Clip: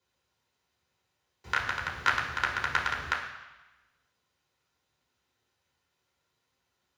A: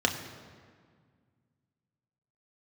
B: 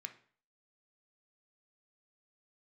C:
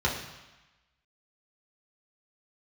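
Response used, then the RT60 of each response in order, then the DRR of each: C; 1.8 s, 0.50 s, 1.1 s; 2.0 dB, 6.5 dB, -4.5 dB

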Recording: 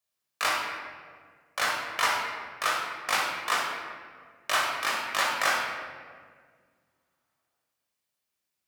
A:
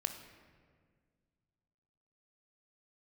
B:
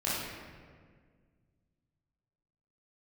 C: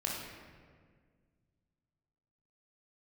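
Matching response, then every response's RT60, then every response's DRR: C; 1.8 s, 1.8 s, 1.8 s; 6.5 dB, -9.5 dB, -3.5 dB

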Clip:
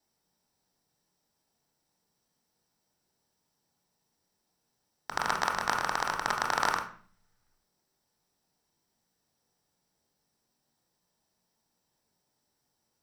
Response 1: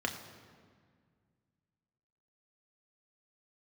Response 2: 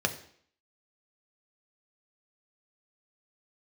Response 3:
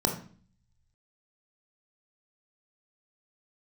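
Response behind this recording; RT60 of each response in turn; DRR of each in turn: 3; 1.9 s, 0.60 s, 0.45 s; 2.5 dB, 5.0 dB, 3.0 dB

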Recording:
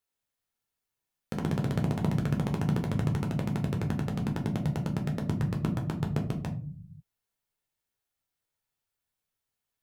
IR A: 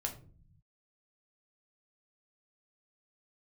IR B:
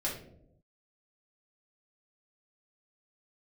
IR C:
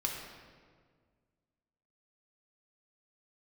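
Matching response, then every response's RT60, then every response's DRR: A; 0.45 s, 0.80 s, 1.8 s; 1.5 dB, -6.0 dB, -1.0 dB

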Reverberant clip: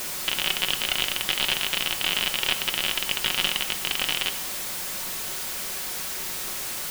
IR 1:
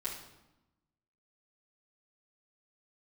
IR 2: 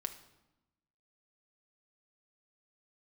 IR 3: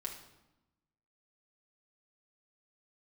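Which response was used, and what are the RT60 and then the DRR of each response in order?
2; 0.95 s, 0.95 s, 0.95 s; -8.5 dB, 5.5 dB, -1.5 dB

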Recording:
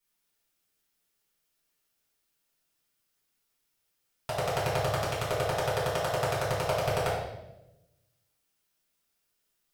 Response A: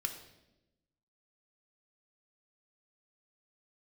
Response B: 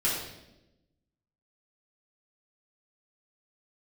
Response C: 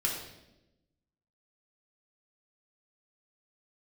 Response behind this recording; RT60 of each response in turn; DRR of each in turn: B; 0.95 s, 0.95 s, 0.95 s; 5.0 dB, -8.5 dB, -2.5 dB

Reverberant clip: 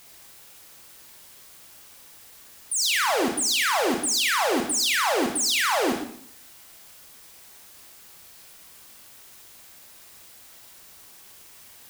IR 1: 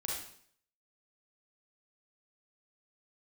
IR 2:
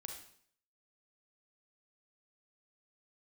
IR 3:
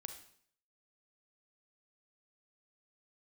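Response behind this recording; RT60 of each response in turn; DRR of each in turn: 2; 0.60 s, 0.60 s, 0.60 s; -4.0 dB, 2.0 dB, 6.0 dB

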